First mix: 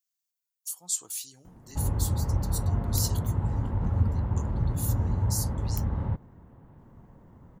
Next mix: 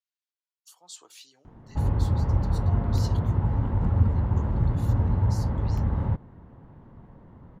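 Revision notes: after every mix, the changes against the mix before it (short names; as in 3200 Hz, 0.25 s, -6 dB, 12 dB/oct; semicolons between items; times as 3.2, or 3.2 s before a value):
speech: add three-band isolator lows -19 dB, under 330 Hz, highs -23 dB, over 4400 Hz; background +3.5 dB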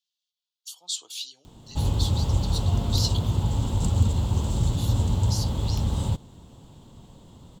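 background: remove air absorption 300 m; master: add resonant high shelf 2500 Hz +10.5 dB, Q 3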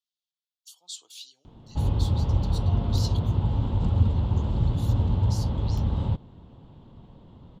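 speech -8.5 dB; background: add air absorption 340 m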